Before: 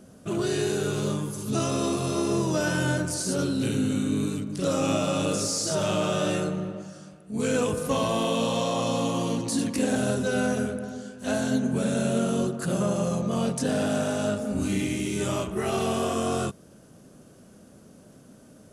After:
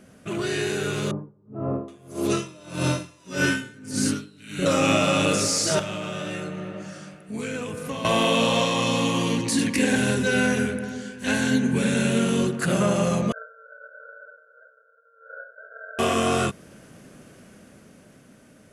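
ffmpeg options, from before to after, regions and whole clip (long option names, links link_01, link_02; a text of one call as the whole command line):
ffmpeg -i in.wav -filter_complex "[0:a]asettb=1/sr,asplit=3[link_01][link_02][link_03];[link_01]atrim=end=1.114[link_04];[link_02]atrim=start=1.11:end=4.66,asetpts=PTS-STARTPTS,afade=type=in:duration=0.004:curve=qsin,afade=type=out:start_time=3.546:duration=0.004:curve=qsin,acrossover=split=990[link_05][link_06];[link_06]adelay=770[link_07];[link_05][link_07]amix=inputs=2:normalize=0,atrim=end_sample=156555,aeval=exprs='val(0)*pow(10,-26*(0.5-0.5*cos(2*PI*1.7*n/s))/20)':channel_layout=same[link_08];[link_03]atrim=start=4.656[link_09];[link_04][link_08]acrossfade=duration=0.004:curve1=hsin:curve2=qsin[link_10];[link_10][link_09]acrossfade=duration=0.004:curve1=qsin:curve2=hsin,asettb=1/sr,asplit=3[link_11][link_12][link_13];[link_11]atrim=end=5.794[link_14];[link_12]atrim=start=5.79:end=8.05,asetpts=PTS-STARTPTS,afade=type=in:duration=0.004:curve=qsin,afade=type=out:start_time=2.256:duration=0.004:curve=qsin,highpass=63,acrossover=split=95|290[link_15][link_16][link_17];[link_15]acompressor=threshold=-55dB:ratio=4[link_18];[link_16]acompressor=threshold=-39dB:ratio=4[link_19];[link_17]acompressor=threshold=-39dB:ratio=4[link_20];[link_18][link_19][link_20]amix=inputs=3:normalize=0[link_21];[link_13]atrim=start=8.046[link_22];[link_14][link_21]acrossfade=duration=0.004:curve1=hsin:curve2=qsin[link_23];[link_23][link_22]acrossfade=duration=0.004:curve1=qsin:curve2=hsin,asettb=1/sr,asplit=3[link_24][link_25][link_26];[link_24]atrim=end=8.654[link_27];[link_25]atrim=start=8.65:end=12.62,asetpts=PTS-STARTPTS,afade=type=in:duration=0.004:curve=qsin,afade=type=out:start_time=3.966:duration=0.004:curve=qsin,equalizer=frequency=650:width_type=o:width=0.27:gain=-13.5,bandreject=frequency=1300:width=6.4[link_28];[link_26]atrim=start=12.616[link_29];[link_27][link_28]acrossfade=duration=0.004:curve1=hsin:curve2=qsin[link_30];[link_30][link_29]acrossfade=duration=0.004:curve1=qsin:curve2=hsin,asettb=1/sr,asplit=3[link_31][link_32][link_33];[link_31]atrim=end=13.324[link_34];[link_32]atrim=start=13.32:end=15.99,asetpts=PTS-STARTPTS,afade=type=in:duration=0.004:curve=qsin,afade=type=out:start_time=2.666:duration=0.004:curve=qsin,asuperpass=centerf=1000:order=12:qfactor=5.1,aeval=exprs='val(0)*sin(2*PI*460*n/s)':channel_layout=same[link_35];[link_33]atrim=start=15.986[link_36];[link_34][link_35]acrossfade=duration=0.004:curve1=hsin:curve2=qsin[link_37];[link_37][link_36]acrossfade=duration=0.004:curve1=qsin:curve2=hsin,equalizer=frequency=2100:width=1.3:gain=11,dynaudnorm=framelen=160:gausssize=17:maxgain=5dB,volume=-1.5dB" out.wav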